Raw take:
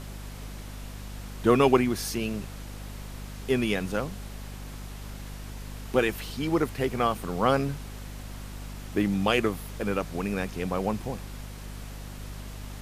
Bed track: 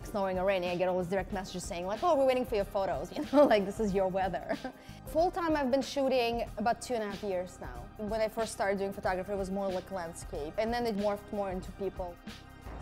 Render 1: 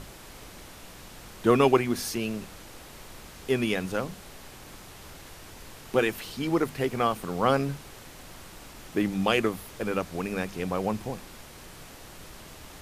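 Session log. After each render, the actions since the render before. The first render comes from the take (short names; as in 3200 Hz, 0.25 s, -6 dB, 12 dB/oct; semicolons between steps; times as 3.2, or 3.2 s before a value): notches 50/100/150/200/250 Hz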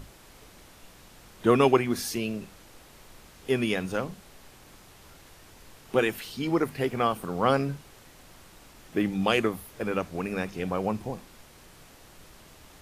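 noise print and reduce 6 dB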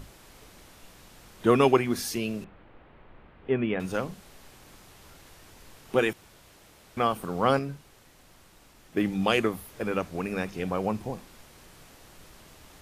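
2.44–3.8 Bessel low-pass 1800 Hz, order 8; 6.13–6.97 room tone; 7.59–8.97 gain -4.5 dB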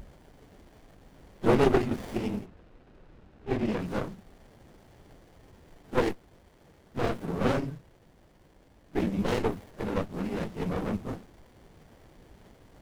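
phase scrambler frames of 50 ms; running maximum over 33 samples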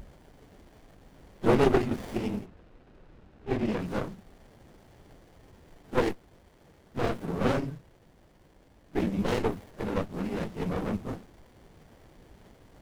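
nothing audible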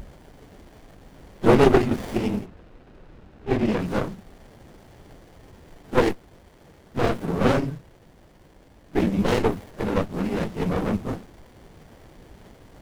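gain +6.5 dB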